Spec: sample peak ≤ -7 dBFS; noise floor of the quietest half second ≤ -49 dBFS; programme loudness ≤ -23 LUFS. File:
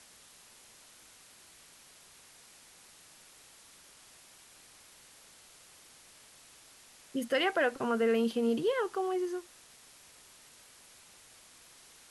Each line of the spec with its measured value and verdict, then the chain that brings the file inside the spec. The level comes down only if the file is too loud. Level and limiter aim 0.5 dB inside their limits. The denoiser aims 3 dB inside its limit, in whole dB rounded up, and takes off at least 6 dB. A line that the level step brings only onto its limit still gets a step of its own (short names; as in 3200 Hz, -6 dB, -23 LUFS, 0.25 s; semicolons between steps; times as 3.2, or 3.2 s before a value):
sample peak -18.0 dBFS: OK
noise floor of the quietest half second -57 dBFS: OK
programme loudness -31.0 LUFS: OK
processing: none